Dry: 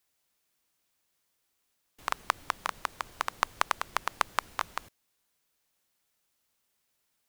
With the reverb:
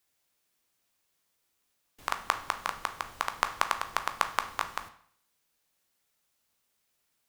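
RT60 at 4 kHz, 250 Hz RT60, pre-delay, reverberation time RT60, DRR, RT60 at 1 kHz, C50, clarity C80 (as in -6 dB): 0.50 s, 0.60 s, 12 ms, 0.60 s, 7.5 dB, 0.60 s, 12.5 dB, 16.0 dB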